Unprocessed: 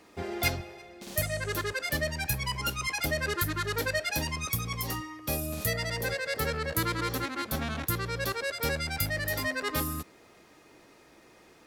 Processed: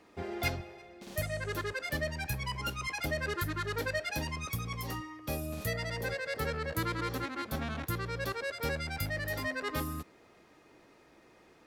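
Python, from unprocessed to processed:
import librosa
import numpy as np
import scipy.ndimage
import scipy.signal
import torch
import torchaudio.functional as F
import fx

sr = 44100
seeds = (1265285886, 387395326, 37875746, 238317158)

y = fx.high_shelf(x, sr, hz=4500.0, db=-8.0)
y = F.gain(torch.from_numpy(y), -3.0).numpy()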